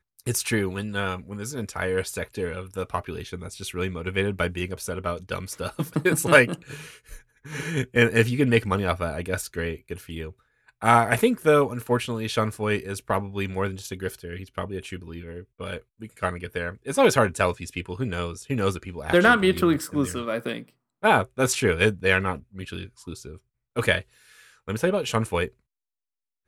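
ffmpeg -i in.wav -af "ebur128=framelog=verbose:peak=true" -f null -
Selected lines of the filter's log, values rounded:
Integrated loudness:
  I:         -24.7 LUFS
  Threshold: -35.5 LUFS
Loudness range:
  LRA:         7.4 LU
  Threshold: -45.4 LUFS
  LRA low:   -30.1 LUFS
  LRA high:  -22.7 LUFS
True peak:
  Peak:       -2.2 dBFS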